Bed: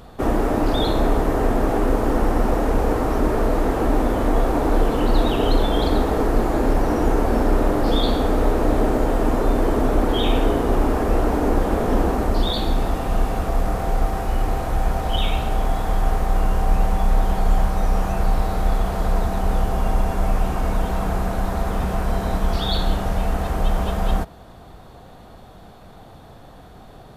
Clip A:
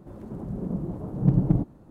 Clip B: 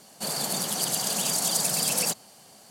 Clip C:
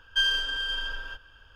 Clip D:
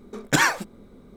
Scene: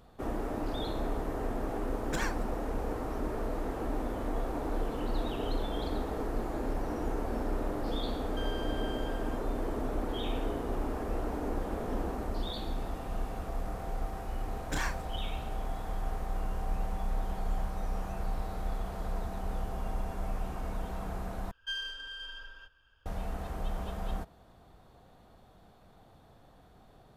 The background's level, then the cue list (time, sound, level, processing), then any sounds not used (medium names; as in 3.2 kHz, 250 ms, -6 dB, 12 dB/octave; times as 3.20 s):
bed -15 dB
1.80 s: add D -17 dB
8.21 s: add C -13.5 dB + compression, threshold -29 dBFS
14.39 s: add D -17.5 dB + doubling 33 ms -4 dB
21.51 s: replace with C -12.5 dB
not used: A, B